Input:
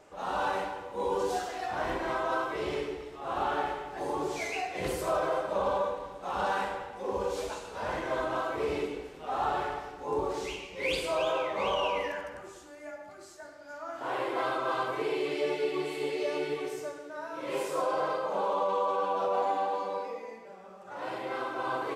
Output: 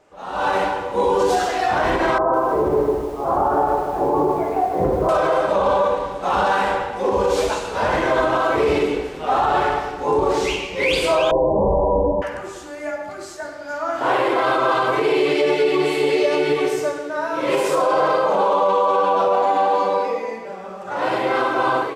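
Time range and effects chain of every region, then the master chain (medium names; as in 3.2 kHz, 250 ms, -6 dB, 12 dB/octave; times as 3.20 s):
2.18–5.09 s: low-pass 1.1 kHz 24 dB/octave + bit-crushed delay 153 ms, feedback 55%, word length 9-bit, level -8 dB
11.31–12.22 s: steep low-pass 1 kHz 96 dB/octave + tilt EQ -4.5 dB/octave
whole clip: treble shelf 7.7 kHz -5 dB; level rider gain up to 16 dB; peak limiter -9.5 dBFS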